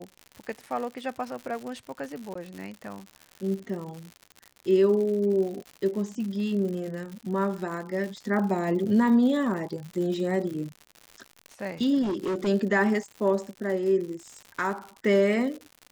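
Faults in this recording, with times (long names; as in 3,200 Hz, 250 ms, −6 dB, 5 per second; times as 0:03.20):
surface crackle 120 per second −34 dBFS
0:02.34–0:02.35: drop-out 14 ms
0:12.02–0:12.48: clipping −25 dBFS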